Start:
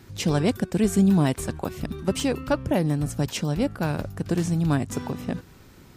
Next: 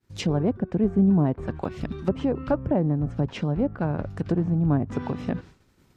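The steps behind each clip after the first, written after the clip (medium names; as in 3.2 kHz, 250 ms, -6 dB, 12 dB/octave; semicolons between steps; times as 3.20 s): low-pass that closes with the level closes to 900 Hz, closed at -20.5 dBFS; in parallel at 0 dB: gain riding within 5 dB 2 s; on the sum: expander -31 dBFS; trim -6.5 dB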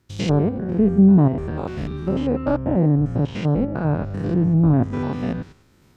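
spectrogram pixelated in time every 100 ms; trim +7 dB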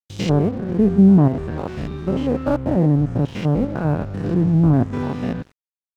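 crossover distortion -41.5 dBFS; trim +1.5 dB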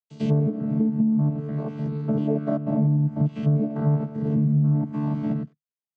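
vocoder on a held chord bare fifth, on D3; compression 12:1, threshold -20 dBFS, peak gain reduction 12 dB; comb of notches 250 Hz; trim +3.5 dB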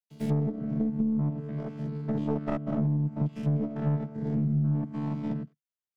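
tracing distortion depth 0.34 ms; trim -6 dB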